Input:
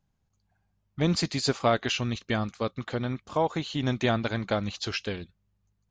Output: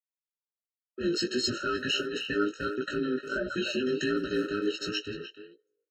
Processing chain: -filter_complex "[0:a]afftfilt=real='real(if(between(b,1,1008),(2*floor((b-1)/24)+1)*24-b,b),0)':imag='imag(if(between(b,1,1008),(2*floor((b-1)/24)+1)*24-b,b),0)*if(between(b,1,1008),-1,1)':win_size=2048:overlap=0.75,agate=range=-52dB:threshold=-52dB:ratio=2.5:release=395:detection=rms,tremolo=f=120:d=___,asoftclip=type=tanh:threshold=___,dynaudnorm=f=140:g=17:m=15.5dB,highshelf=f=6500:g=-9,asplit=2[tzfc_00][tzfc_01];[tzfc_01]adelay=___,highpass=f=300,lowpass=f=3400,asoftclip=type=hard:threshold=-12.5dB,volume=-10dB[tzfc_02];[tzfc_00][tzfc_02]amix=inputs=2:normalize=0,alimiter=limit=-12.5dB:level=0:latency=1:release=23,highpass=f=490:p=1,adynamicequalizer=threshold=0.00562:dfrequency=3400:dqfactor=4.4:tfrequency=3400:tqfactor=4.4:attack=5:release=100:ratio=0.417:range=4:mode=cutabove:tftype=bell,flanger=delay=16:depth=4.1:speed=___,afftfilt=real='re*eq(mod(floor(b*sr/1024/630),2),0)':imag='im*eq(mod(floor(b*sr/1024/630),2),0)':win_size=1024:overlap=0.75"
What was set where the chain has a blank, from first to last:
0.261, -17.5dB, 300, 1.4